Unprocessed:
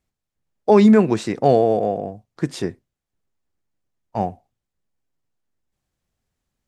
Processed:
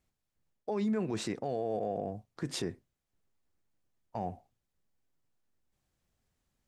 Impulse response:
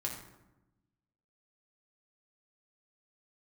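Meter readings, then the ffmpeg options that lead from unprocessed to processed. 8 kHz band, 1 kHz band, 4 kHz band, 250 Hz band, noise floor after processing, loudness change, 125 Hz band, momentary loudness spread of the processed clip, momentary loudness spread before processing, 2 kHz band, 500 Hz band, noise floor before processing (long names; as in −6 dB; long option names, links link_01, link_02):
−5.5 dB, −17.0 dB, −7.5 dB, −18.0 dB, −85 dBFS, −18.0 dB, −15.5 dB, 13 LU, 16 LU, −15.0 dB, −18.0 dB, −83 dBFS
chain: -af "areverse,acompressor=threshold=-20dB:ratio=6,areverse,alimiter=limit=-23.5dB:level=0:latency=1:release=118,volume=-1.5dB"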